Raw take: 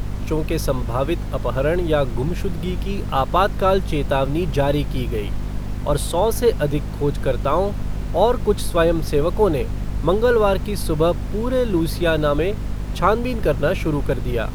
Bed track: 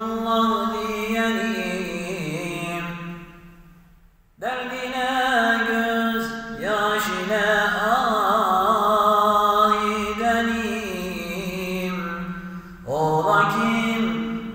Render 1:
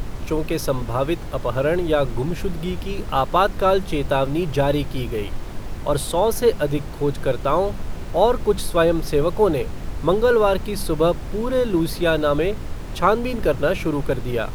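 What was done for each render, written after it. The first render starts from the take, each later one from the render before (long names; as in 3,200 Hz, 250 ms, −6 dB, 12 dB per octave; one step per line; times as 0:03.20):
mains-hum notches 50/100/150/200/250 Hz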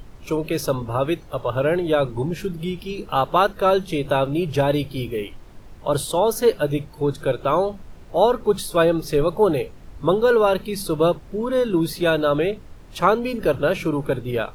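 noise reduction from a noise print 13 dB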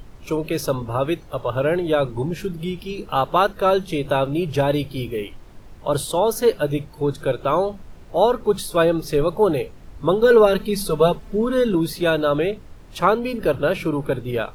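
0:10.21–0:11.75: comb filter 4.6 ms, depth 89%
0:13.02–0:14.18: parametric band 6,500 Hz −8 dB 0.21 octaves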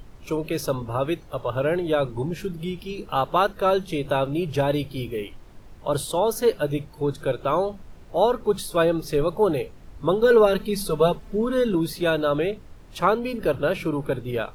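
level −3 dB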